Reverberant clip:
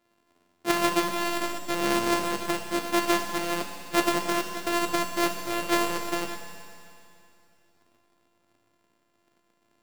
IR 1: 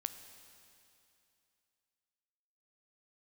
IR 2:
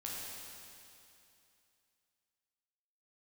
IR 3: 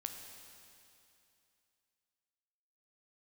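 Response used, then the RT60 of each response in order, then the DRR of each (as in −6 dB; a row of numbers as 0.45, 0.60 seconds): 3; 2.7, 2.7, 2.7 seconds; 9.0, −5.0, 4.0 decibels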